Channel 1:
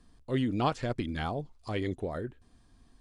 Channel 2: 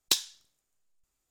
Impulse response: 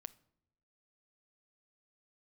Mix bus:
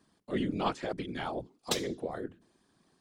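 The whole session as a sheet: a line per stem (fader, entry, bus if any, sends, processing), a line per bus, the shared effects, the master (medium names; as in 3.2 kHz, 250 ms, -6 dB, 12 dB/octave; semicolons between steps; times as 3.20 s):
-2.5 dB, 0.00 s, send -14 dB, none
-0.5 dB, 1.60 s, no send, level-controlled noise filter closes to 2.1 kHz, open at -27 dBFS; tilt shelf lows +8 dB, about 1.3 kHz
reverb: on, pre-delay 7 ms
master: high-pass 170 Hz 24 dB/octave; hum notches 60/120/180/240/300 Hz; whisper effect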